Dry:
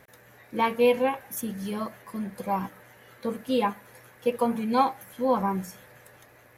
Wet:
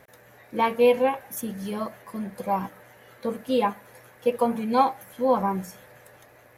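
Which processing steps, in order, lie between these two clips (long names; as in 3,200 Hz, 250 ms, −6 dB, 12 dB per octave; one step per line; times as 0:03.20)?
parametric band 630 Hz +4 dB 1 octave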